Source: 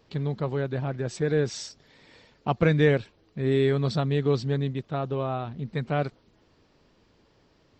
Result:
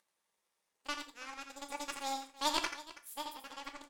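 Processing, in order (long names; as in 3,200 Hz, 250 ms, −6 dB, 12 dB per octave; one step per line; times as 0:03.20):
played backwards from end to start
high-pass filter 750 Hz 6 dB per octave
high-shelf EQ 4,600 Hz +5.5 dB
in parallel at −0.5 dB: downward compressor, threshold −41 dBFS, peak gain reduction 18.5 dB
on the sum: flanger 0.32 Hz, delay 6.4 ms, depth 8.6 ms, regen −62%
upward compression, threshold −42 dBFS
power curve on the samples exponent 2
multi-tap delay 170/655 ms −8/−17 dB
reverb whose tail is shaped and stops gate 250 ms falling, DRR 6 dB
wrong playback speed 7.5 ips tape played at 15 ips
level +3.5 dB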